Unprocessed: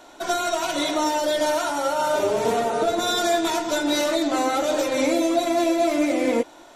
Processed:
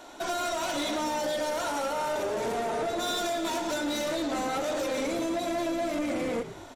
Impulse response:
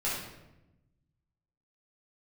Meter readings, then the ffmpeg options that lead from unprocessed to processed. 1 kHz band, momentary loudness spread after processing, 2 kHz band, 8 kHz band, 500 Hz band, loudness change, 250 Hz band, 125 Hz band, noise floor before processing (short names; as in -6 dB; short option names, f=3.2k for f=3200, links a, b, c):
-7.5 dB, 1 LU, -6.5 dB, -7.0 dB, -8.0 dB, -7.5 dB, -8.0 dB, -2.0 dB, -47 dBFS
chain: -filter_complex "[0:a]acompressor=threshold=-23dB:ratio=6,asoftclip=type=tanh:threshold=-26dB,asplit=2[a][b];[b]asplit=5[c][d][e][f][g];[c]adelay=112,afreqshift=-68,volume=-12.5dB[h];[d]adelay=224,afreqshift=-136,volume=-19.1dB[i];[e]adelay=336,afreqshift=-204,volume=-25.6dB[j];[f]adelay=448,afreqshift=-272,volume=-32.2dB[k];[g]adelay=560,afreqshift=-340,volume=-38.7dB[l];[h][i][j][k][l]amix=inputs=5:normalize=0[m];[a][m]amix=inputs=2:normalize=0"